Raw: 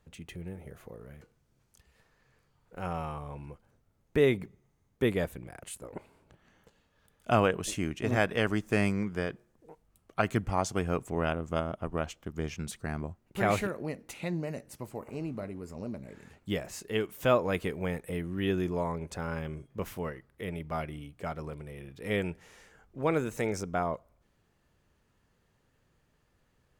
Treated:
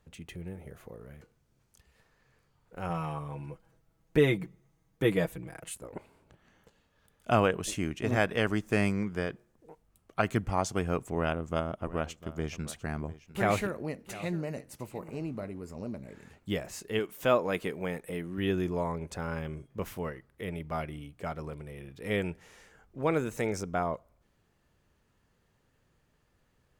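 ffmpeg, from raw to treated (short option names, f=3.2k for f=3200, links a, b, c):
-filter_complex "[0:a]asettb=1/sr,asplit=3[a][b][c];[a]atrim=end=2.894[d];[b]atrim=start=2.89:end=5.74,asetpts=PTS-STARTPTS,afade=t=in:d=0.004:c=qsin,afade=t=out:st=2.846:d=0.004:c=qsin,aecho=1:1:6.2:0.73,atrim=end_sample=125685[e];[c]atrim=start=5.736[f];[d][e]acrossfade=d=0.004:c1=hsin:c2=qsin[g];[g][f]acrossfade=d=0.004:c1=qsin:c2=hsin,asettb=1/sr,asplit=3[h][i][j];[h]atrim=end=11.114[k];[i]atrim=start=11.11:end=15.22,asetpts=PTS-STARTPTS,afade=t=in:d=0.004:c=qsin,afade=t=out:st=4.106:d=0.004:c=qsin,aecho=1:1:700:0.141,atrim=end_sample=181251[l];[j]atrim=start=15.216[m];[k][l]acrossfade=d=0.004:c1=hsin:c2=qsin[n];[n][m]acrossfade=d=0.004:c1=qsin:c2=hsin,asettb=1/sr,asplit=3[o][p][q];[o]atrim=end=16.994[r];[p]atrim=start=16.99:end=18.38,asetpts=PTS-STARTPTS,afade=t=in:d=0.004:c=qsin,afade=t=out:st=1.386:d=0.004:c=qsin,equalizer=f=71:t=o:w=1.3:g=-12.5[s];[q]atrim=start=18.376[t];[r][s]acrossfade=d=0.004:c1=hsin:c2=qsin[u];[u][t]acrossfade=d=0.004:c1=qsin:c2=hsin"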